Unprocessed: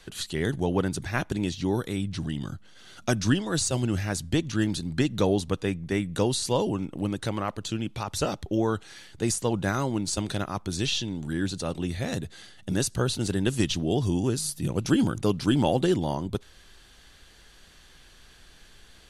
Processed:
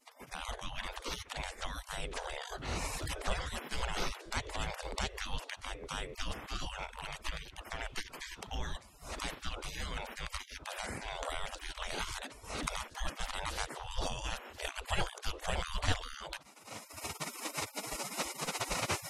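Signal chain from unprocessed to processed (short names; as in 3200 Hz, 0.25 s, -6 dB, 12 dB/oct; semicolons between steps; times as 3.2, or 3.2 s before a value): recorder AGC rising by 40 dB/s; spectral gate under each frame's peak -30 dB weak; RIAA curve playback; gain +10 dB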